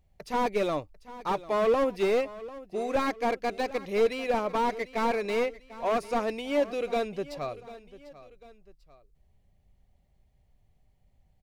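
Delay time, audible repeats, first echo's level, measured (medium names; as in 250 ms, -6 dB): 745 ms, 2, -17.0 dB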